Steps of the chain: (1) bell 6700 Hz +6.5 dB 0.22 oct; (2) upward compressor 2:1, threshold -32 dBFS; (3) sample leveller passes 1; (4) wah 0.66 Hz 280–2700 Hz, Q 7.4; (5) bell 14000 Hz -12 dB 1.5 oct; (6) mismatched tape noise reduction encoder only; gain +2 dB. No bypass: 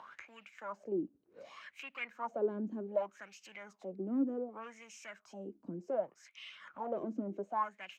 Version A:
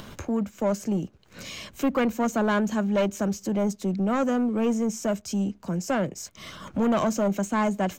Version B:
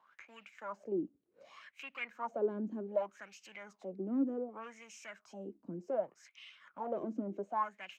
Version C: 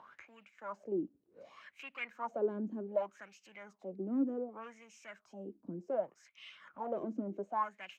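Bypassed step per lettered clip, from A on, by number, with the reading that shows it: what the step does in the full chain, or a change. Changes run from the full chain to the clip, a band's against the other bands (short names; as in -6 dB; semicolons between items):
4, 8 kHz band +9.5 dB; 2, momentary loudness spread change +3 LU; 6, 4 kHz band -2.5 dB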